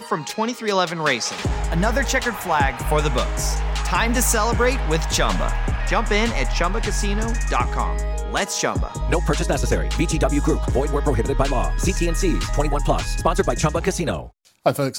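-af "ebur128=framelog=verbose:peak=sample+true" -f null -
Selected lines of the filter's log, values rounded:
Integrated loudness:
  I:         -21.6 LUFS
  Threshold: -31.6 LUFS
Loudness range:
  LRA:         2.1 LU
  Threshold: -41.5 LUFS
  LRA low:   -22.6 LUFS
  LRA high:  -20.4 LUFS
Sample peak:
  Peak:       -3.7 dBFS
True peak:
  Peak:       -3.7 dBFS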